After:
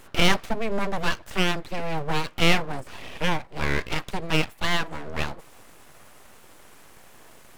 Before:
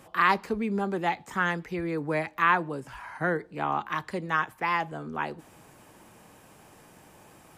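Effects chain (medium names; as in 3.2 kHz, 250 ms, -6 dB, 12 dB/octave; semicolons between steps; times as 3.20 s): full-wave rectifier; trim +5.5 dB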